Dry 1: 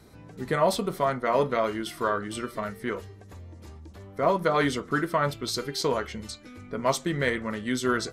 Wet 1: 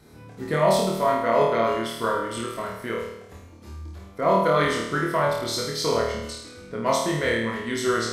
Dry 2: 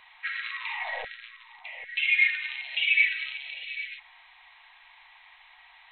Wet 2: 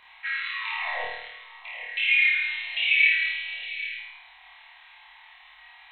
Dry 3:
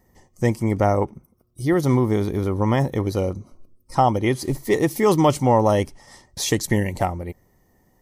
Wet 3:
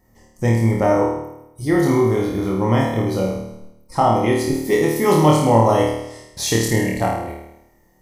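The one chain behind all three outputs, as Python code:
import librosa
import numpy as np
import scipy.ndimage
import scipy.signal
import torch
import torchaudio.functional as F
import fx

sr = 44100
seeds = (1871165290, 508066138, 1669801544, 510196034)

y = fx.room_flutter(x, sr, wall_m=4.5, rt60_s=0.84)
y = y * librosa.db_to_amplitude(-1.0)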